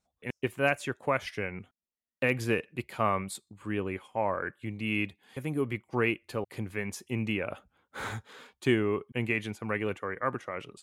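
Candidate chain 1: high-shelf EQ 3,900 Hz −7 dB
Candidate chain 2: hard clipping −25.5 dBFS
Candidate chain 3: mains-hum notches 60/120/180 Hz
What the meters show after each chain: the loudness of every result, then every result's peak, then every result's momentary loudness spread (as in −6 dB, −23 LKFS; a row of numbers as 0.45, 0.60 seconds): −32.5, −34.5, −32.5 LKFS; −13.5, −25.5, −12.5 dBFS; 11, 8, 11 LU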